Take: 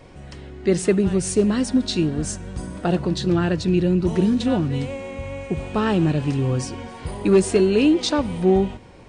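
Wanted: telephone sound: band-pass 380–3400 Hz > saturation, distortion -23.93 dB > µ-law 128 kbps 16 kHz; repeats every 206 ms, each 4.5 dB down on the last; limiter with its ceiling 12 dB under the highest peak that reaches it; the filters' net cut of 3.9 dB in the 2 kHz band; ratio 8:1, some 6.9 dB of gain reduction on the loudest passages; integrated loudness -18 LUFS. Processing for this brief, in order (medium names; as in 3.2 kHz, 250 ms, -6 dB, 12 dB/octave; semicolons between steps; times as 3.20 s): peaking EQ 2 kHz -4.5 dB; compression 8:1, threshold -19 dBFS; peak limiter -23.5 dBFS; band-pass 380–3400 Hz; feedback delay 206 ms, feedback 60%, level -4.5 dB; saturation -24 dBFS; trim +18 dB; µ-law 128 kbps 16 kHz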